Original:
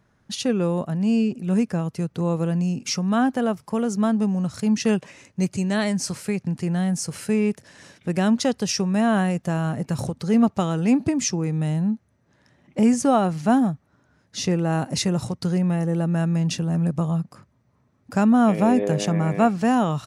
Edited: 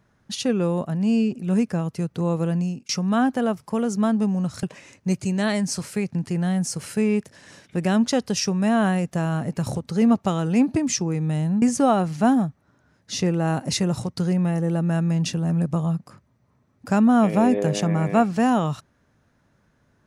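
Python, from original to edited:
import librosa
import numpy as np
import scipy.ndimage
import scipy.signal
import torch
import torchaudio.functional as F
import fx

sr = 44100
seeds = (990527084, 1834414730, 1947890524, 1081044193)

y = fx.edit(x, sr, fx.fade_out_span(start_s=2.5, length_s=0.39, curve='qsin'),
    fx.cut(start_s=4.63, length_s=0.32),
    fx.cut(start_s=11.94, length_s=0.93), tone=tone)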